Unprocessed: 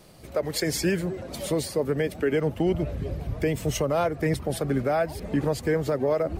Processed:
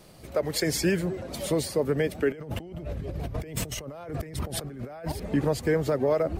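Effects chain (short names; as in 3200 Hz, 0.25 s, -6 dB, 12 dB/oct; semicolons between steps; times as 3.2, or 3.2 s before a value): 2.32–5.12 negative-ratio compressor -36 dBFS, ratio -1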